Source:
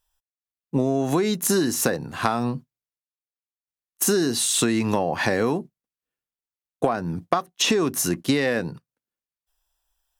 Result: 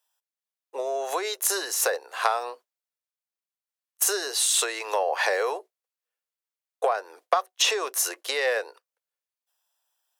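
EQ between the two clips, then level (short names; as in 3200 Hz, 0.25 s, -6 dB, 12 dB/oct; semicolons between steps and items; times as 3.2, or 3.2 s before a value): steep high-pass 450 Hz 48 dB/oct; 0.0 dB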